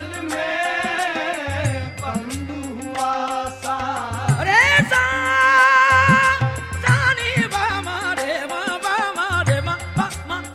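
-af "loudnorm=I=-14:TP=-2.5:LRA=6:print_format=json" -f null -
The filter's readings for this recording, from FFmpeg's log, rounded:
"input_i" : "-19.1",
"input_tp" : "-1.7",
"input_lra" : "9.0",
"input_thresh" : "-29.1",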